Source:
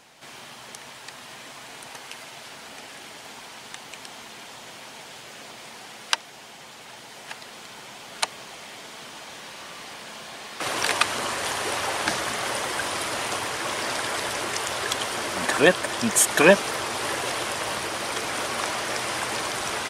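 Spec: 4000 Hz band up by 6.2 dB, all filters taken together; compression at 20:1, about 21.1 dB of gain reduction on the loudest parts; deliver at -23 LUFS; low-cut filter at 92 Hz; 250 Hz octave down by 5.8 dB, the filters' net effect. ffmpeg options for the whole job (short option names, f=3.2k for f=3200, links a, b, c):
-af "highpass=92,equalizer=f=250:t=o:g=-8.5,equalizer=f=4k:t=o:g=8,acompressor=threshold=-33dB:ratio=20,volume=13dB"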